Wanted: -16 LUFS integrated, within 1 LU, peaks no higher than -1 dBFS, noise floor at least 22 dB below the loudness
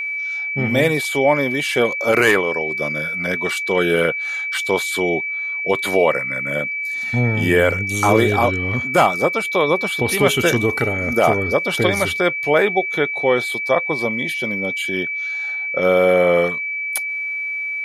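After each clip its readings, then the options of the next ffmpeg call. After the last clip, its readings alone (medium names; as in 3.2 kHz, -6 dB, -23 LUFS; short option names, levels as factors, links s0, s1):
steady tone 2.3 kHz; tone level -22 dBFS; loudness -18.0 LUFS; peak level -1.5 dBFS; loudness target -16.0 LUFS
-> -af "bandreject=f=2300:w=30"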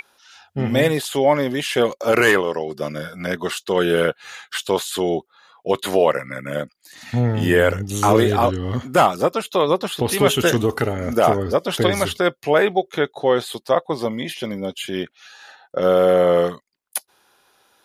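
steady tone not found; loudness -20.0 LUFS; peak level -2.0 dBFS; loudness target -16.0 LUFS
-> -af "volume=1.58,alimiter=limit=0.891:level=0:latency=1"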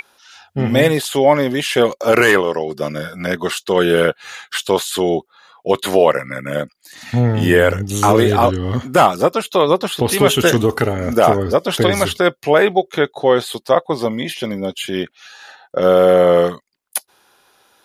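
loudness -16.0 LUFS; peak level -1.0 dBFS; noise floor -60 dBFS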